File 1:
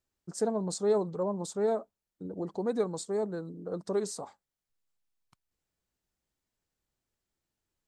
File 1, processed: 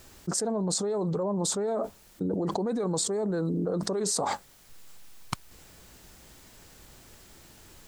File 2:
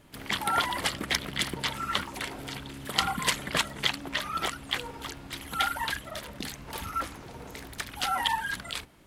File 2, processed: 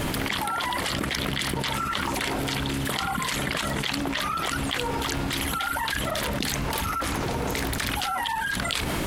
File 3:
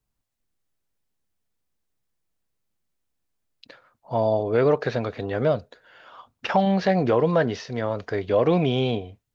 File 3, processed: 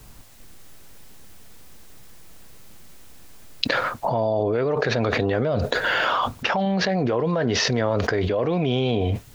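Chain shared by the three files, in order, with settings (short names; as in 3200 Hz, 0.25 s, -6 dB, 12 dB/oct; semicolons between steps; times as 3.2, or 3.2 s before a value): fast leveller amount 100%; gain -6 dB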